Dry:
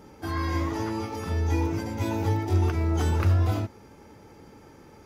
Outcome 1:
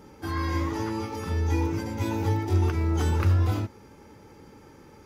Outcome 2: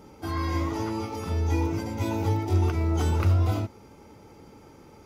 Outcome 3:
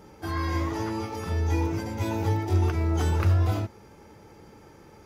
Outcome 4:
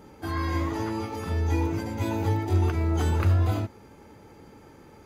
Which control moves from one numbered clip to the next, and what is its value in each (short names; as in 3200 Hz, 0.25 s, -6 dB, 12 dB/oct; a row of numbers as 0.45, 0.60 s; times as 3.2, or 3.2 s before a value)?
notch, frequency: 680, 1700, 260, 5500 Hz